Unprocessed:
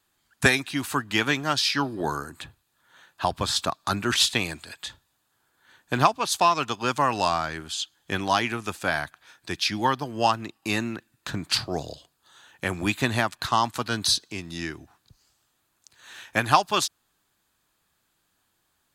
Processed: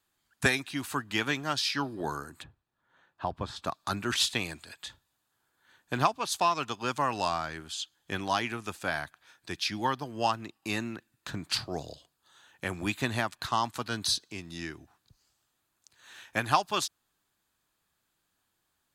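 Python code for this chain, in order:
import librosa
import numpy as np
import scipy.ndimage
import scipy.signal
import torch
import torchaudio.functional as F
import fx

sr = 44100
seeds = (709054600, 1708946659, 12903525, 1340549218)

y = fx.lowpass(x, sr, hz=1100.0, slope=6, at=(2.42, 3.64), fade=0.02)
y = y * 10.0 ** (-6.0 / 20.0)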